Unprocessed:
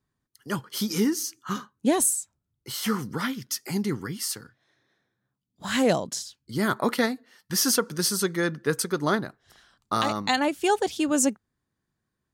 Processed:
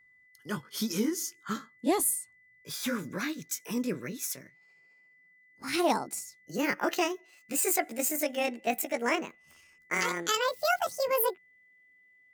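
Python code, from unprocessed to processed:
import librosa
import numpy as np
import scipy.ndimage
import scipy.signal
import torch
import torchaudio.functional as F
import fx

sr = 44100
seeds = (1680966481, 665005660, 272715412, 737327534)

y = fx.pitch_glide(x, sr, semitones=11.0, runs='starting unshifted')
y = y + 10.0 ** (-56.0 / 20.0) * np.sin(2.0 * np.pi * 2000.0 * np.arange(len(y)) / sr)
y = y * 10.0 ** (-3.5 / 20.0)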